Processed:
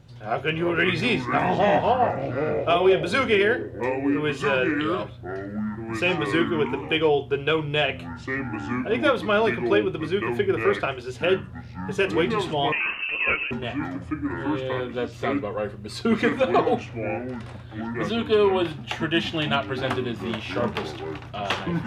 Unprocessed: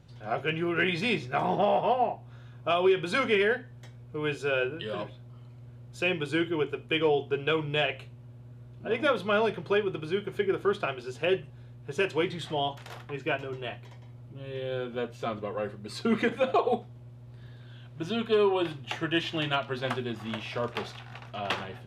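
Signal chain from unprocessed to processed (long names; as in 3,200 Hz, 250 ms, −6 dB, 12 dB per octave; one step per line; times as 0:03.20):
delay with pitch and tempo change per echo 241 ms, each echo −5 semitones, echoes 2, each echo −6 dB
0:12.72–0:13.51: voice inversion scrambler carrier 2,900 Hz
level +4.5 dB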